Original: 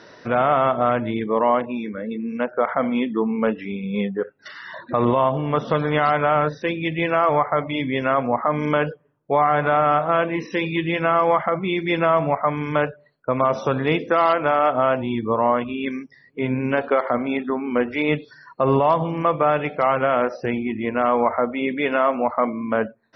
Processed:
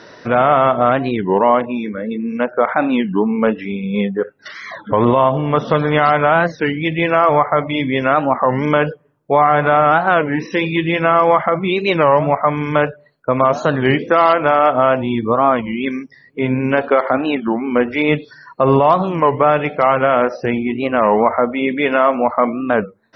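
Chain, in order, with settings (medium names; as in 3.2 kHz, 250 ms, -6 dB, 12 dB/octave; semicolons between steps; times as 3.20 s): warped record 33 1/3 rpm, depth 250 cents; trim +5.5 dB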